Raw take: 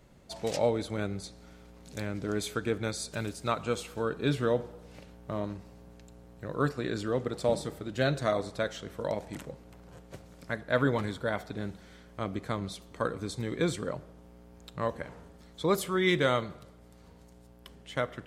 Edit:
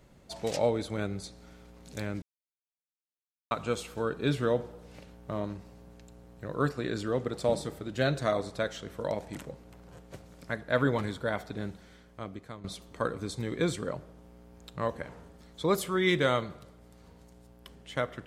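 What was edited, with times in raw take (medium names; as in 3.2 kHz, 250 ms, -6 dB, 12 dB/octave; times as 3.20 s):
2.22–3.51 s: mute
11.63–12.64 s: fade out, to -14 dB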